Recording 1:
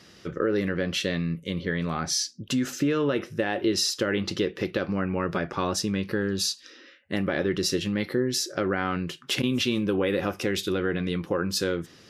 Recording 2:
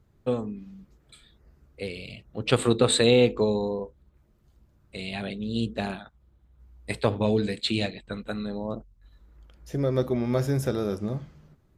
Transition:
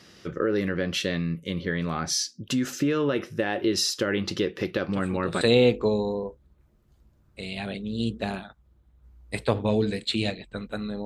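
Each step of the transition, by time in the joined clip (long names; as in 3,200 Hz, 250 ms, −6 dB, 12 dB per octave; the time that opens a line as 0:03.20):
recording 1
0:04.93: mix in recording 2 from 0:02.49 0.48 s −17.5 dB
0:05.41: continue with recording 2 from 0:02.97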